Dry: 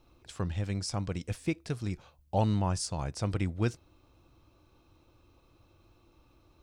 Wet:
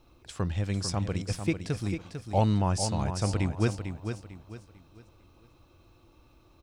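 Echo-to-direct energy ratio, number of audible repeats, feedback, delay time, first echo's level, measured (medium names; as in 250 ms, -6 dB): -7.5 dB, 3, 32%, 448 ms, -8.0 dB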